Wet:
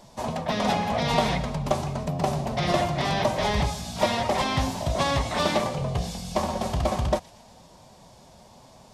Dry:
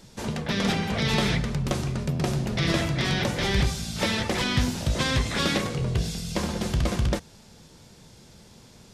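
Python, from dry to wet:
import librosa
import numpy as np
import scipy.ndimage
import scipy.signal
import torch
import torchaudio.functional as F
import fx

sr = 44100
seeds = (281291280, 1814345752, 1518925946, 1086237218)

y = fx.band_shelf(x, sr, hz=770.0, db=11.5, octaves=1.2)
y = fx.echo_wet_highpass(y, sr, ms=118, feedback_pct=56, hz=2400.0, wet_db=-17)
y = fx.pitch_keep_formants(y, sr, semitones=1.0)
y = y * 10.0 ** (-2.5 / 20.0)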